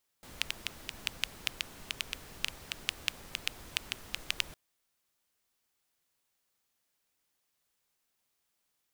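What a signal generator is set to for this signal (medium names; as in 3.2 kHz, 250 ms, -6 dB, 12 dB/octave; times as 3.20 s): rain from filtered ticks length 4.31 s, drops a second 5.3, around 2.8 kHz, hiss -9 dB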